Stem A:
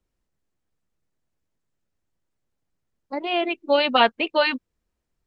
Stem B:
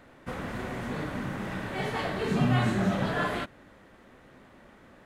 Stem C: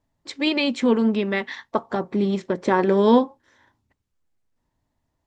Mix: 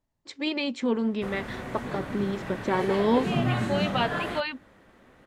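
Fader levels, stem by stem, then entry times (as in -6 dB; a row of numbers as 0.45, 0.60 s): -10.0, -1.5, -7.0 dB; 0.00, 0.95, 0.00 s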